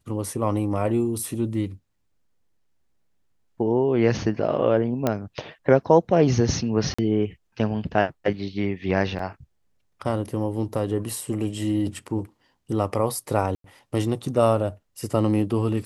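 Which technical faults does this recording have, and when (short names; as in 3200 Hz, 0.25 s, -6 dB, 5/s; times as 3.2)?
5.07 pop -9 dBFS
6.94–6.99 gap 45 ms
9.19 gap 3.1 ms
13.55–13.64 gap 93 ms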